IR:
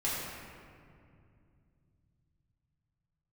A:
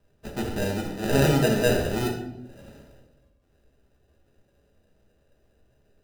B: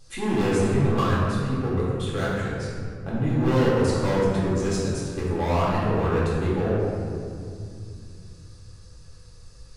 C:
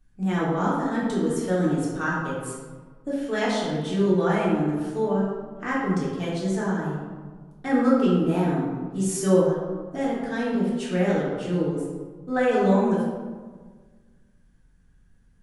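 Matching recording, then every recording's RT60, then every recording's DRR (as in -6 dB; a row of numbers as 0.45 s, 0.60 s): B; 0.80 s, 2.4 s, 1.5 s; 0.0 dB, -8.5 dB, -8.0 dB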